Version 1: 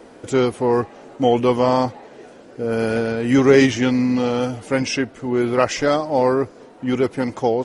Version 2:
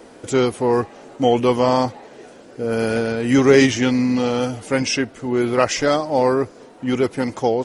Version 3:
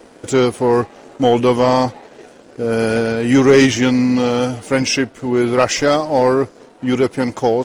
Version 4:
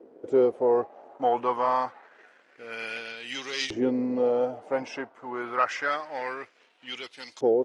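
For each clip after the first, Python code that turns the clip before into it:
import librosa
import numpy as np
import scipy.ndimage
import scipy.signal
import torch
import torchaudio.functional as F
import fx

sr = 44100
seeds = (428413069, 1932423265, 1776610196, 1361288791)

y1 = fx.high_shelf(x, sr, hz=4000.0, db=5.5)
y2 = fx.leveller(y1, sr, passes=1)
y3 = fx.filter_lfo_bandpass(y2, sr, shape='saw_up', hz=0.27, low_hz=370.0, high_hz=4300.0, q=2.3)
y3 = y3 * 10.0 ** (-3.5 / 20.0)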